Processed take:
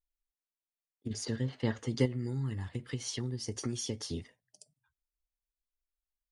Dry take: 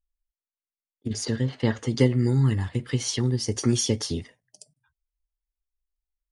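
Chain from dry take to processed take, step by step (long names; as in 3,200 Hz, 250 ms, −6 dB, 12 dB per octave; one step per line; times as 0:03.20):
0:02.05–0:04.13: downward compressor 3 to 1, threshold −25 dBFS, peak gain reduction 7.5 dB
level −8 dB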